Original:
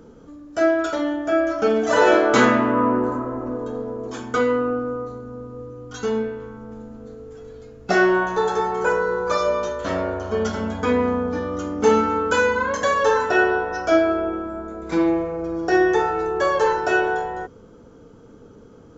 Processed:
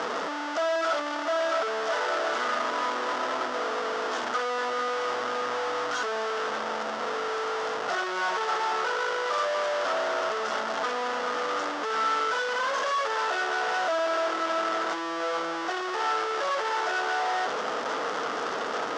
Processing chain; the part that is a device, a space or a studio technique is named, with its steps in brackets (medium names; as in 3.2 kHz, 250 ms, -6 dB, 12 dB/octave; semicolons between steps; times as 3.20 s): home computer beeper (one-bit comparator; cabinet simulation 570–5400 Hz, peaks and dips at 660 Hz +4 dB, 1.3 kHz +6 dB, 2.4 kHz -7 dB, 4.1 kHz -6 dB); trim -5 dB